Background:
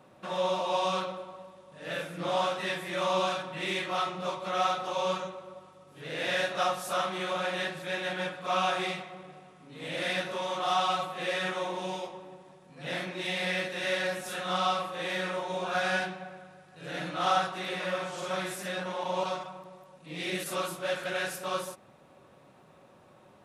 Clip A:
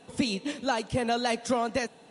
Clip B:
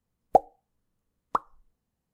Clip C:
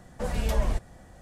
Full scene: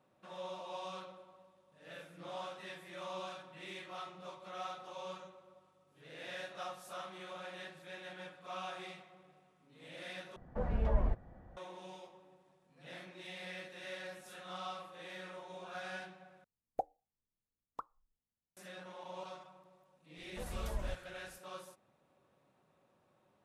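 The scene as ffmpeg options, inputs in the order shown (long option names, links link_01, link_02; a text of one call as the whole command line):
ffmpeg -i bed.wav -i cue0.wav -i cue1.wav -i cue2.wav -filter_complex "[3:a]asplit=2[link_01][link_02];[0:a]volume=-15.5dB[link_03];[link_01]lowpass=1400[link_04];[link_03]asplit=3[link_05][link_06][link_07];[link_05]atrim=end=10.364[link_08];[link_04]atrim=end=1.21,asetpts=PTS-STARTPTS,volume=-5.5dB[link_09];[link_06]atrim=start=11.566:end=16.444[link_10];[2:a]atrim=end=2.13,asetpts=PTS-STARTPTS,volume=-18dB[link_11];[link_07]atrim=start=18.566[link_12];[link_02]atrim=end=1.21,asetpts=PTS-STARTPTS,volume=-14dB,afade=type=in:duration=0.004:curve=hsin,afade=type=out:start_time=1.206:duration=0.004:curve=hsin,adelay=20170[link_13];[link_08][link_09]acrossfade=duration=0.004:curve1=hsin:curve2=hsin[link_14];[link_14][link_10]acrossfade=duration=0.004:curve1=hsin:curve2=hsin[link_15];[link_15][link_11]acrossfade=duration=0.004:curve1=hsin:curve2=hsin[link_16];[link_16][link_12]acrossfade=duration=0.004:curve1=hsin:curve2=hsin[link_17];[link_17][link_13]amix=inputs=2:normalize=0" out.wav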